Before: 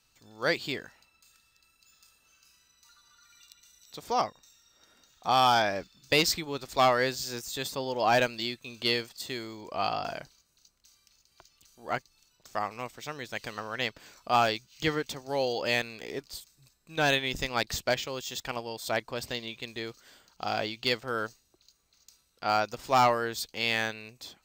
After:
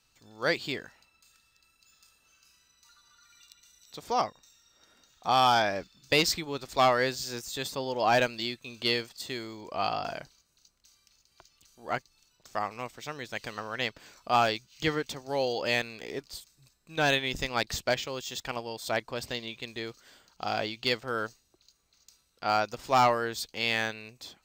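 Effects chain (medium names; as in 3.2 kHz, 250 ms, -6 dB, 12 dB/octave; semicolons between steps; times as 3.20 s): treble shelf 12 kHz -4.5 dB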